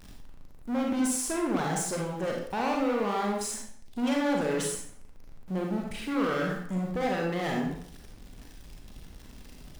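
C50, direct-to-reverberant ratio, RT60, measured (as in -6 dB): 2.0 dB, -1.0 dB, 0.60 s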